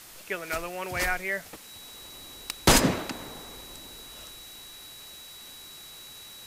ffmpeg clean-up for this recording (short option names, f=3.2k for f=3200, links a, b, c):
-af "bandreject=f=3.9k:w=30,afwtdn=0.0045"